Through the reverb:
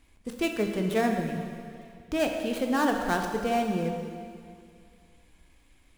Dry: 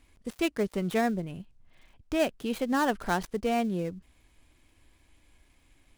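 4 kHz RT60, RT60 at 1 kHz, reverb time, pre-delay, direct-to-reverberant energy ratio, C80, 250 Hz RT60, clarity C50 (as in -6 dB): 2.2 s, 2.3 s, 2.3 s, 7 ms, 3.0 dB, 5.5 dB, 2.3 s, 4.5 dB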